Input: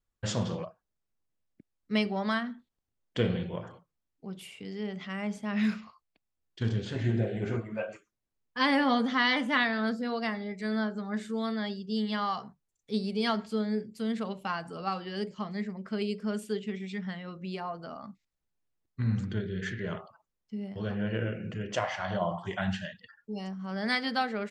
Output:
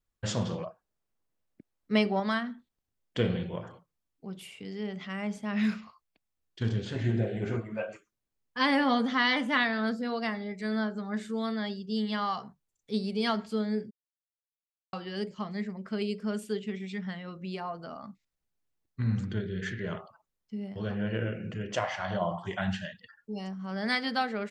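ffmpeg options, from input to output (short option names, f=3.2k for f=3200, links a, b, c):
-filter_complex "[0:a]asettb=1/sr,asplit=3[a][b][c];[a]atrim=end=0.654[d];[b]atrim=start=0.65:end=2.2,asetpts=PTS-STARTPTS,afade=t=in:d=0.004:c=qsin,afade=t=out:st=1.546:d=0.004:c=qsin,equalizer=f=650:w=0.42:g=5[e];[c]atrim=start=2.196[f];[d][e]acrossfade=d=0.004:c1=hsin:c2=qsin[g];[g][f]acrossfade=d=0.004:c1=qsin:c2=hsin,asplit=3[h][i][j];[h]atrim=end=13.91,asetpts=PTS-STARTPTS,afade=t=out:st=13.906:d=0.004:c=hsin[k];[i]atrim=start=13.91:end=14.93,asetpts=PTS-STARTPTS,volume=0[l];[j]atrim=start=14.93,asetpts=PTS-STARTPTS,afade=t=in:d=0.004:c=hsin[m];[k][l][m]concat=n=3:v=0:a=1"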